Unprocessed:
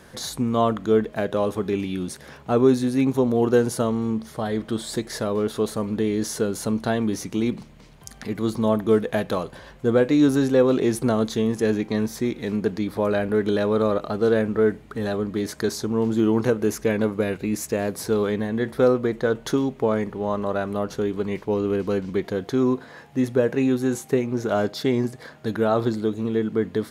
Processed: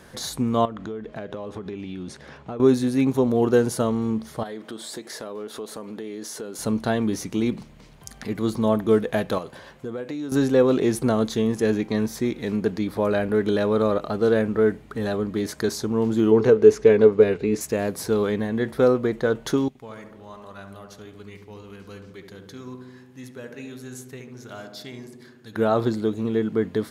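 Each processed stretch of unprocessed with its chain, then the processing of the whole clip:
0.65–2.60 s: distance through air 79 m + compression 8:1, threshold -29 dBFS
4.43–6.59 s: high-pass 260 Hz + compression 3:1, threshold -33 dBFS
9.38–10.32 s: high-pass 67 Hz + compression 5:1, threshold -28 dBFS + bass shelf 170 Hz -4.5 dB
16.31–17.61 s: low-pass 5.9 kHz + peaking EQ 430 Hz +14 dB 0.2 oct
19.68–25.56 s: amplifier tone stack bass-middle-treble 5-5-5 + filtered feedback delay 71 ms, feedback 78%, low-pass 1.2 kHz, level -5.5 dB
whole clip: none

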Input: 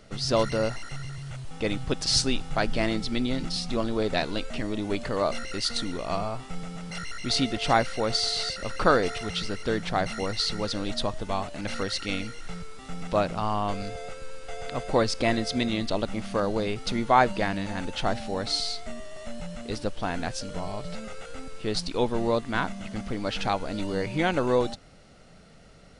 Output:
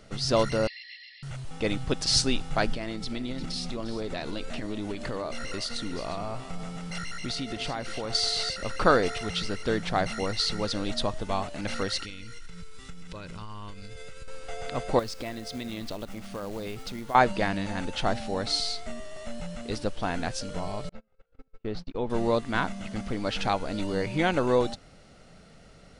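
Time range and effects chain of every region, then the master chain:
0.67–1.23 s: brick-wall FIR band-pass 1.7–5.5 kHz + comb 4.1 ms, depth 63%
2.74–8.15 s: compression 10:1, threshold -28 dBFS + delay 353 ms -13 dB
12.04–14.28 s: peaking EQ 670 Hz -14 dB 1.1 oct + comb 2 ms, depth 37% + compression 12:1, threshold -35 dBFS
14.99–17.15 s: tremolo 1.2 Hz, depth 45% + compression 3:1, threshold -33 dBFS + short-mantissa float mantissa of 2-bit
20.89–22.10 s: gate -32 dBFS, range -36 dB + compression 1.5:1, threshold -30 dBFS + tape spacing loss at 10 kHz 29 dB
whole clip: none

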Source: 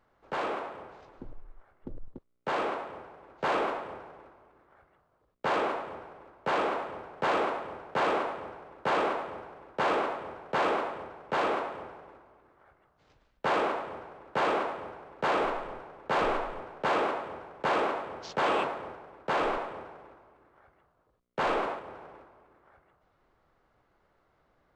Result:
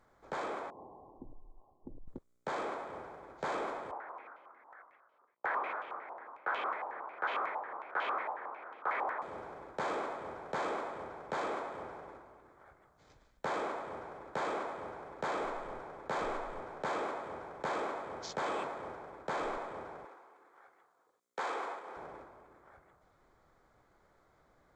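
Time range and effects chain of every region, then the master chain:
0.70–2.08 s: rippled Chebyshev low-pass 1.1 kHz, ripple 6 dB + compression 1.5:1, threshold -52 dBFS
3.91–9.22 s: high-pass 700 Hz + frequency shift -60 Hz + step-sequenced low-pass 11 Hz 900–2900 Hz
20.05–21.97 s: high-pass 440 Hz + band-stop 610 Hz, Q 6.8
whole clip: peaking EQ 7.2 kHz +8 dB 0.51 oct; band-stop 2.8 kHz, Q 5.3; compression 2:1, threshold -43 dBFS; trim +1.5 dB

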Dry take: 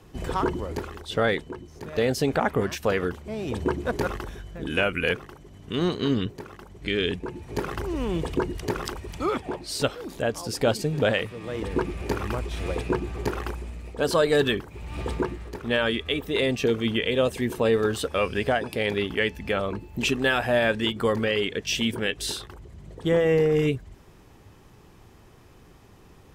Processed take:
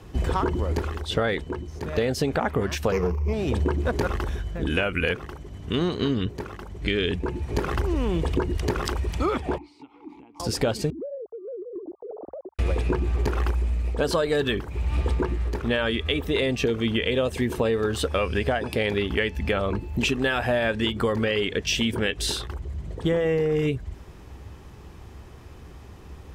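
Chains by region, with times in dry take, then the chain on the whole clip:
2.92–3.33 s: median filter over 15 samples + rippled EQ curve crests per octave 0.8, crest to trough 16 dB + transformer saturation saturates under 360 Hz
9.58–10.40 s: peaking EQ 1.2 kHz +8 dB 1.6 oct + compression 12:1, threshold -34 dBFS + vowel filter u
10.90–12.59 s: formants replaced by sine waves + steep low-pass 730 Hz + compression 5:1, threshold -39 dBFS
whole clip: peaking EQ 66 Hz +13.5 dB 0.52 oct; compression, threshold -25 dBFS; treble shelf 8.7 kHz -5.5 dB; trim +5 dB

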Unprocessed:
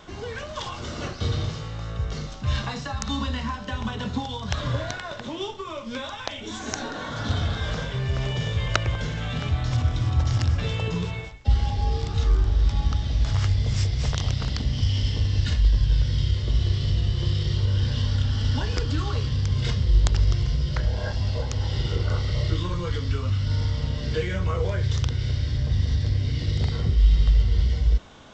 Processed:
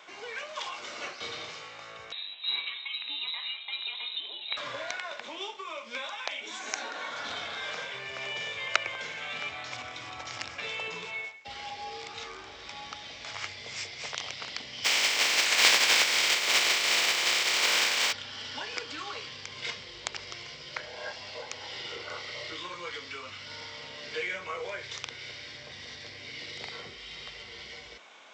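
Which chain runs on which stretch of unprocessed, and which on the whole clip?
2.12–4.57 s: feedback comb 52 Hz, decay 0.78 s + frequency inversion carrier 3.9 kHz
14.84–18.11 s: spectral contrast reduction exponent 0.36 + high-pass 130 Hz
whole clip: high-pass 590 Hz 12 dB/octave; peaking EQ 2.3 kHz +10 dB 0.36 oct; trim -3.5 dB

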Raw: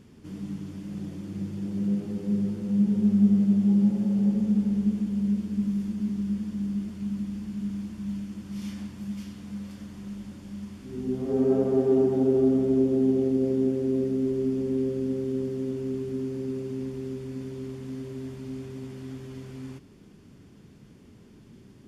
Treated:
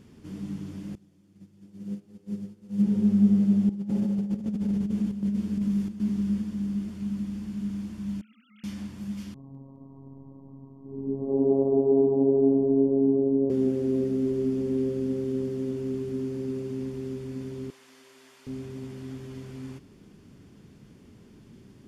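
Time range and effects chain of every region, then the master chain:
0.95–2.82 s: treble shelf 3.8 kHz +6.5 dB + upward expansion 2.5:1, over -34 dBFS
3.69–6.42 s: compressor with a negative ratio -25 dBFS, ratio -0.5 + square tremolo 1.3 Hz, depth 65%, duty 85%
8.21–8.64 s: formants replaced by sine waves + high-pass 760 Hz + treble shelf 2.4 kHz +10.5 dB
9.34–13.50 s: robot voice 136 Hz + brick-wall FIR low-pass 1.2 kHz + two-band feedback delay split 330 Hz, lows 126 ms, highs 209 ms, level -12.5 dB
17.70–18.47 s: high-pass 970 Hz + doubling 37 ms -14 dB
whole clip: none

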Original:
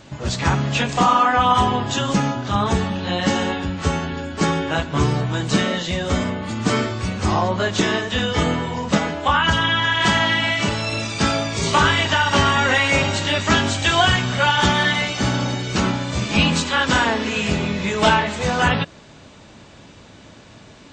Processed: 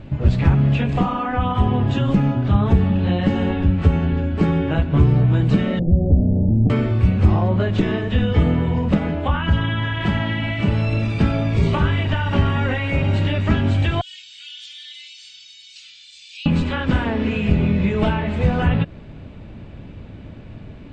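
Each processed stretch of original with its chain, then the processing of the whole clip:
5.79–6.70 s: steep low-pass 800 Hz 96 dB/octave + compression 3:1, threshold -26 dBFS + tilt EQ -2 dB/octave
14.01–16.46 s: inverse Chebyshev high-pass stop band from 910 Hz, stop band 70 dB + level flattener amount 50%
whole clip: fifteen-band graphic EQ 1 kHz -3 dB, 2.5 kHz +6 dB, 6.3 kHz -9 dB; compression 3:1, threshold -20 dBFS; tilt EQ -4 dB/octave; trim -2 dB

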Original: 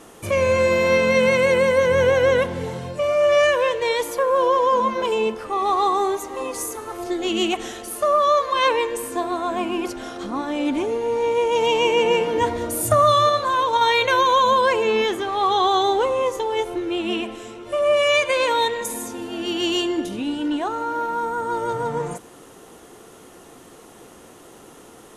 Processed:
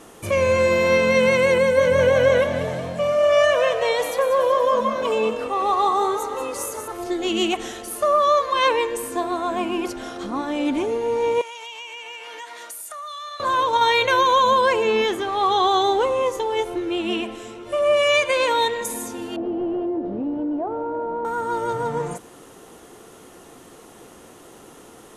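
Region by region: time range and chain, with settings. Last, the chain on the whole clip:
1.58–6.88 s: comb of notches 340 Hz + frequency-shifting echo 188 ms, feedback 51%, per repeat +44 Hz, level -9 dB
11.41–13.40 s: high-pass 1.4 kHz + compression 8:1, threshold -32 dBFS
19.36–21.25 s: one-bit delta coder 32 kbps, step -29.5 dBFS + resonant low-pass 630 Hz, resonance Q 1.8 + compression 4:1, threshold -22 dBFS
whole clip: none

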